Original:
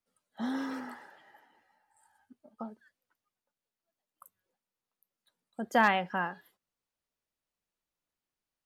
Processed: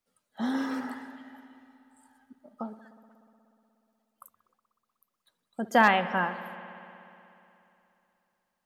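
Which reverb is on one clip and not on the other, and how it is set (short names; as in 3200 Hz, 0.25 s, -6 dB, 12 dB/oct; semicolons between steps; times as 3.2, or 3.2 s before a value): spring tank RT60 3 s, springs 60 ms, chirp 25 ms, DRR 12 dB; gain +4 dB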